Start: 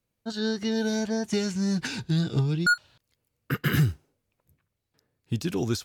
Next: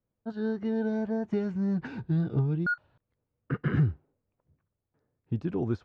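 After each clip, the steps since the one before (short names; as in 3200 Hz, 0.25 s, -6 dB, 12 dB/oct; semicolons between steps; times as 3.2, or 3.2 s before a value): LPF 1200 Hz 12 dB/oct; gain -2 dB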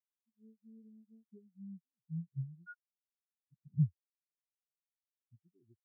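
spectral expander 4:1; gain -5.5 dB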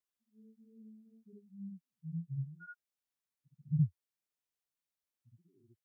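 reverse echo 65 ms -3.5 dB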